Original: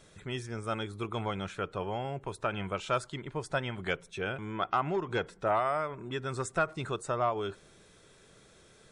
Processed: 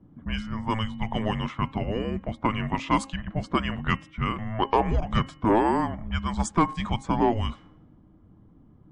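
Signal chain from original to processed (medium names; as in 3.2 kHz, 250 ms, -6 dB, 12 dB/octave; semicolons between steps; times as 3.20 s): frequency shift -330 Hz; level-controlled noise filter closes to 390 Hz, open at -28 dBFS; de-hum 269.8 Hz, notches 11; trim +7.5 dB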